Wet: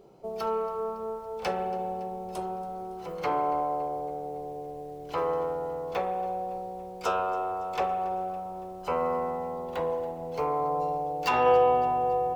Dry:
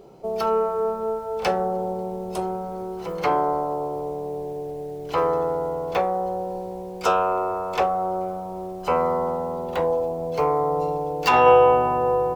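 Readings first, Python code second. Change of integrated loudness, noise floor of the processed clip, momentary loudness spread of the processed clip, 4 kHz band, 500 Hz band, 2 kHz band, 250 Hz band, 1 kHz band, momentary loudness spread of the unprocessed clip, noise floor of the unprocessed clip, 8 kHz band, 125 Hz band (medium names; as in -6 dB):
-6.5 dB, -41 dBFS, 12 LU, -7.0 dB, -7.5 dB, -7.5 dB, -8.0 dB, -5.0 dB, 11 LU, -34 dBFS, no reading, -8.5 dB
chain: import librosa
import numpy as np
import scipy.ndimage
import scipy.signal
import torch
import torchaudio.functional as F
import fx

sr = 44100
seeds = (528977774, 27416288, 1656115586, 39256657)

y = fx.echo_thinned(x, sr, ms=280, feedback_pct=59, hz=420.0, wet_db=-20)
y = fx.rev_spring(y, sr, rt60_s=1.6, pass_ms=(31, 44), chirp_ms=40, drr_db=8.0)
y = y * 10.0 ** (-7.5 / 20.0)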